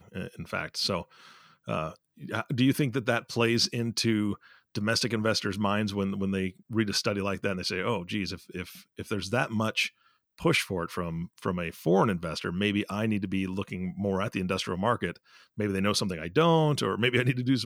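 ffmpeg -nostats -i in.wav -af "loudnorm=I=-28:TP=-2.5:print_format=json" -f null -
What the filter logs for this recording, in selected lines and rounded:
"input_i" : "-28.3",
"input_tp" : "-10.6",
"input_lra" : "3.6",
"input_thresh" : "-38.7",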